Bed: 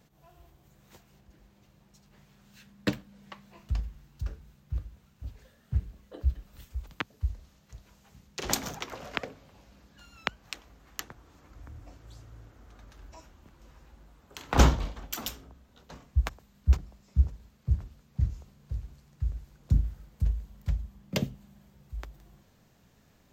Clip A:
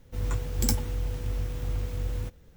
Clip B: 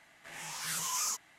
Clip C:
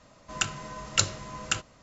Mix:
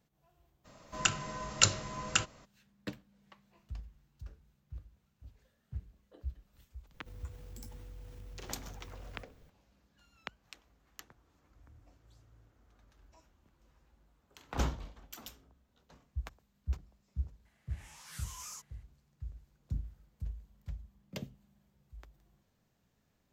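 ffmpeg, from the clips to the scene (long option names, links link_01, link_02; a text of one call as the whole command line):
ffmpeg -i bed.wav -i cue0.wav -i cue1.wav -i cue2.wav -filter_complex "[0:a]volume=-13dB[link_01];[1:a]acompressor=threshold=-43dB:ratio=3:attack=1.1:release=83:knee=1:detection=peak[link_02];[3:a]atrim=end=1.82,asetpts=PTS-STARTPTS,volume=-1dB,afade=type=in:duration=0.02,afade=type=out:start_time=1.8:duration=0.02,adelay=640[link_03];[link_02]atrim=end=2.56,asetpts=PTS-STARTPTS,volume=-6.5dB,afade=type=in:duration=0.004:curve=hsin,afade=type=out:start_time=2.556:duration=0.004:curve=hsin,adelay=6940[link_04];[2:a]atrim=end=1.38,asetpts=PTS-STARTPTS,volume=-13dB,afade=type=in:duration=0.004:curve=hsin,afade=type=out:start_time=1.376:duration=0.004:curve=hsin,adelay=17450[link_05];[link_01][link_03][link_04][link_05]amix=inputs=4:normalize=0" out.wav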